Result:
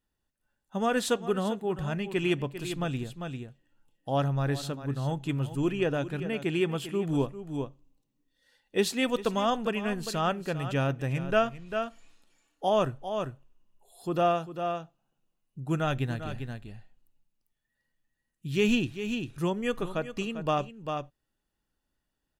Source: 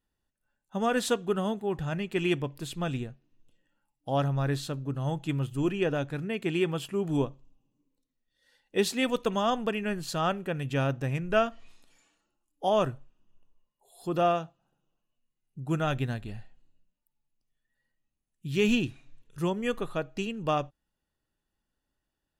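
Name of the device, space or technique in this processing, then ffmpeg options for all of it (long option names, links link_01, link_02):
ducked delay: -filter_complex "[0:a]asplit=3[link_01][link_02][link_03];[link_02]adelay=397,volume=-5dB[link_04];[link_03]apad=whole_len=1005288[link_05];[link_04][link_05]sidechaincompress=threshold=-38dB:ratio=3:attack=11:release=320[link_06];[link_01][link_06]amix=inputs=2:normalize=0"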